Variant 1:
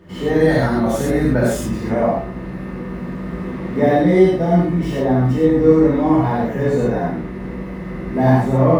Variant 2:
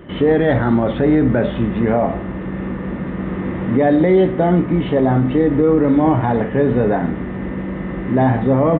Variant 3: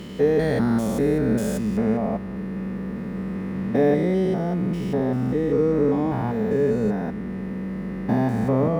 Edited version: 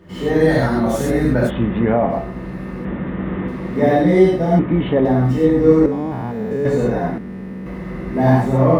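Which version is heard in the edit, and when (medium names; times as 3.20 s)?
1
1.48–2.11 s: from 2, crossfade 0.06 s
2.85–3.48 s: from 2
4.59–5.05 s: from 2
5.86–6.65 s: from 3
7.18–7.66 s: from 3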